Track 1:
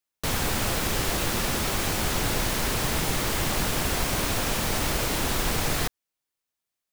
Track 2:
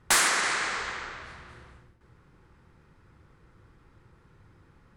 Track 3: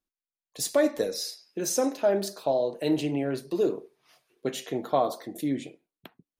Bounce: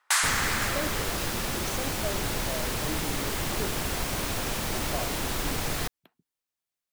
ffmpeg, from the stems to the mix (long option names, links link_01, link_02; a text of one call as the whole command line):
ffmpeg -i stem1.wav -i stem2.wav -i stem3.wav -filter_complex "[0:a]volume=-4dB[link_01];[1:a]highpass=frequency=790:width=0.5412,highpass=frequency=790:width=1.3066,volume=-2dB[link_02];[2:a]volume=-12.5dB[link_03];[link_01][link_02][link_03]amix=inputs=3:normalize=0" out.wav